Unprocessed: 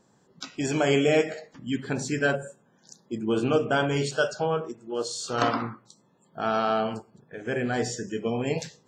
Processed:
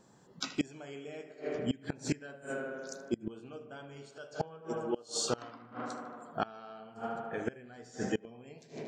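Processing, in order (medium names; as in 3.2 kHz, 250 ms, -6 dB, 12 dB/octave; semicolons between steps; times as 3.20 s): tape echo 77 ms, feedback 85%, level -12 dB, low-pass 3.4 kHz; inverted gate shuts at -20 dBFS, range -25 dB; trim +1 dB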